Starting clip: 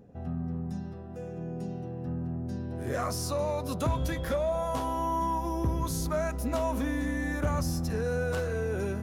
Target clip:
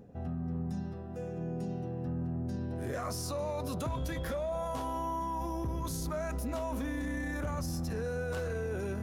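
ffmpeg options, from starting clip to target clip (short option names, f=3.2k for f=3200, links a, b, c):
-af "alimiter=level_in=4.5dB:limit=-24dB:level=0:latency=1:release=14,volume=-4.5dB,areverse,acompressor=mode=upward:threshold=-42dB:ratio=2.5,areverse"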